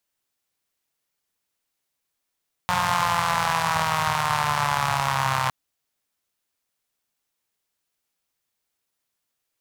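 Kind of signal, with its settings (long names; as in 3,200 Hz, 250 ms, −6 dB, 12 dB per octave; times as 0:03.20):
pulse-train model of a four-cylinder engine, changing speed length 2.81 s, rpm 5,400, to 3,900, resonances 120/960 Hz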